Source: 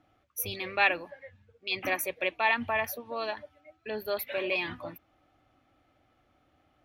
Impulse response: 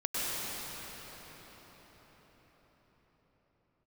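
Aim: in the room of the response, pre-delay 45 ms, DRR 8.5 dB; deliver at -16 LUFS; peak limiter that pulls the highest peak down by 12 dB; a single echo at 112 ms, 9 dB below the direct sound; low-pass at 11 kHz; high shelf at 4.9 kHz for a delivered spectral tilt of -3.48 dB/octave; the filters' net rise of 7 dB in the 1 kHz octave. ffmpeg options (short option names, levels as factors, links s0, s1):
-filter_complex "[0:a]lowpass=11000,equalizer=f=1000:t=o:g=9,highshelf=f=4900:g=-5,alimiter=limit=0.1:level=0:latency=1,aecho=1:1:112:0.355,asplit=2[s0][s1];[1:a]atrim=start_sample=2205,adelay=45[s2];[s1][s2]afir=irnorm=-1:irlink=0,volume=0.133[s3];[s0][s3]amix=inputs=2:normalize=0,volume=6.68"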